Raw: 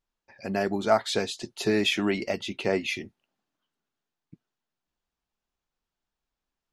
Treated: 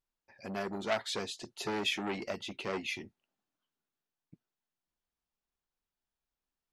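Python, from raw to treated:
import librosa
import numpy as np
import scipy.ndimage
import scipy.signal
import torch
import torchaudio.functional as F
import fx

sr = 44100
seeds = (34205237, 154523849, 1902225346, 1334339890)

y = fx.transformer_sat(x, sr, knee_hz=2000.0)
y = y * 10.0 ** (-6.5 / 20.0)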